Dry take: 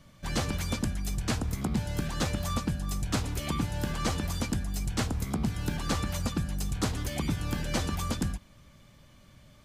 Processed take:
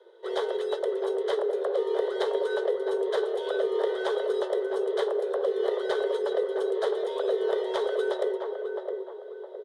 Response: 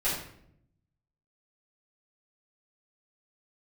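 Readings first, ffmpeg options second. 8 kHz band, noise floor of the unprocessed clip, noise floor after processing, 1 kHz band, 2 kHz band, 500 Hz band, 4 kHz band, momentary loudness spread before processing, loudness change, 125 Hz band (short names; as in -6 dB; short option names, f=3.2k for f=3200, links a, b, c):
under -15 dB, -57 dBFS, -42 dBFS, +2.0 dB, 0.0 dB, +17.0 dB, -3.0 dB, 2 LU, +3.5 dB, under -40 dB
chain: -filter_complex "[0:a]equalizer=f=100:w=1.5:g=5,asplit=2[a][b];[b]adelay=663,lowpass=f=1.1k:p=1,volume=-4.5dB,asplit=2[c][d];[d]adelay=663,lowpass=f=1.1k:p=1,volume=0.42,asplit=2[e][f];[f]adelay=663,lowpass=f=1.1k:p=1,volume=0.42,asplit=2[g][h];[h]adelay=663,lowpass=f=1.1k:p=1,volume=0.42,asplit=2[i][j];[j]adelay=663,lowpass=f=1.1k:p=1,volume=0.42[k];[a][c][e][g][i][k]amix=inputs=6:normalize=0,afreqshift=340,superequalizer=12b=0.282:13b=2.82:16b=3.55,adynamicsmooth=sensitivity=0.5:basefreq=2.1k"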